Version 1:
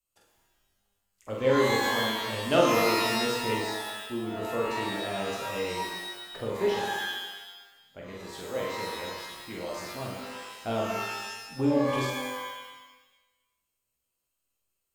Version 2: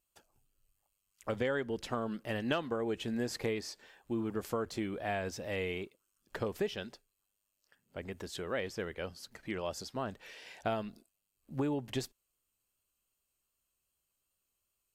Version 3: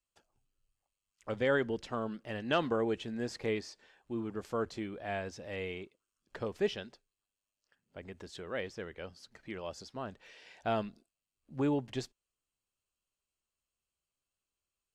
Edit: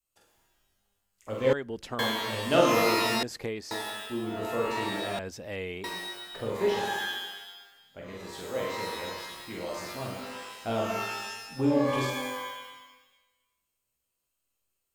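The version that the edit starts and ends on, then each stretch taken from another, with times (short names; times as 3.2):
1
1.53–1.99 from 2
3.23–3.71 from 2
5.19–5.84 from 2
not used: 3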